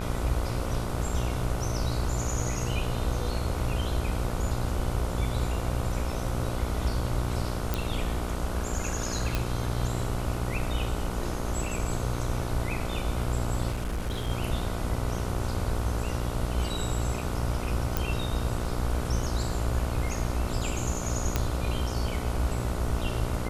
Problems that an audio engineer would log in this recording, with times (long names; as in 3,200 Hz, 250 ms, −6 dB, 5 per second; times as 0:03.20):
mains buzz 60 Hz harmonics 25 −33 dBFS
0:07.74: click
0:09.35: click −12 dBFS
0:13.71–0:14.30: clipping −26.5 dBFS
0:17.97: click
0:21.36: click −10 dBFS